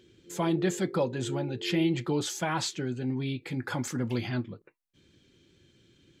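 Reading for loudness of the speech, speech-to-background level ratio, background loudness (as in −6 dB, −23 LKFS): −31.0 LKFS, 9.0 dB, −40.0 LKFS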